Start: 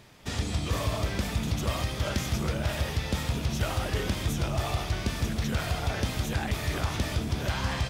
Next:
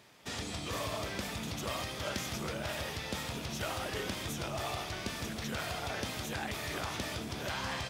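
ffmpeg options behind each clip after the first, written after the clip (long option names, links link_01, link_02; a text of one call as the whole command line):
ffmpeg -i in.wav -af "highpass=frequency=300:poles=1,volume=-3.5dB" out.wav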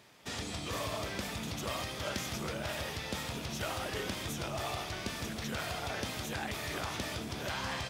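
ffmpeg -i in.wav -af anull out.wav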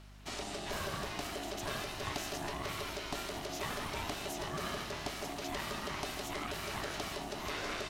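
ffmpeg -i in.wav -af "aeval=exprs='val(0)*sin(2*PI*500*n/s)':channel_layout=same,aeval=exprs='val(0)+0.002*(sin(2*PI*50*n/s)+sin(2*PI*2*50*n/s)/2+sin(2*PI*3*50*n/s)/3+sin(2*PI*4*50*n/s)/4+sin(2*PI*5*50*n/s)/5)':channel_layout=same,volume=1dB" out.wav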